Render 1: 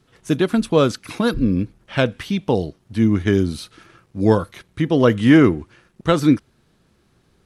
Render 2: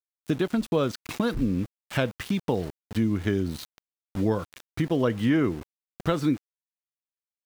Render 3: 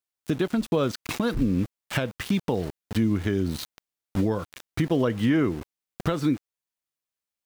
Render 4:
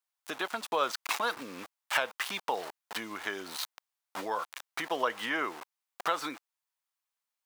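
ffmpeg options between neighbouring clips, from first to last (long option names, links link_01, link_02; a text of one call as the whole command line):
ffmpeg -i in.wav -af "highshelf=frequency=8800:gain=-9,aeval=exprs='val(0)*gte(abs(val(0)),0.0224)':channel_layout=same,acompressor=threshold=-25dB:ratio=2.5" out.wav
ffmpeg -i in.wav -af "alimiter=limit=-19dB:level=0:latency=1:release=362,volume=5dB" out.wav
ffmpeg -i in.wav -af "highpass=frequency=900:width_type=q:width=1.7" out.wav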